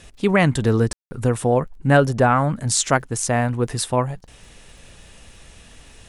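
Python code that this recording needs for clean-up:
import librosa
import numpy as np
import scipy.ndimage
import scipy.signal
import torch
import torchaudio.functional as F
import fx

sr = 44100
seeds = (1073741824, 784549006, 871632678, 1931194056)

y = fx.fix_declick_ar(x, sr, threshold=6.5)
y = fx.fix_ambience(y, sr, seeds[0], print_start_s=4.18, print_end_s=4.68, start_s=0.93, end_s=1.11)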